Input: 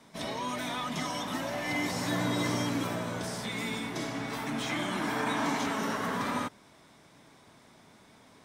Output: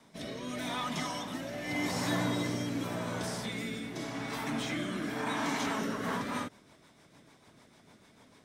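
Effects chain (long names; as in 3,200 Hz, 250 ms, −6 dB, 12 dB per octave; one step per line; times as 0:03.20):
rotating-speaker cabinet horn 0.85 Hz, later 6.7 Hz, at 0:05.70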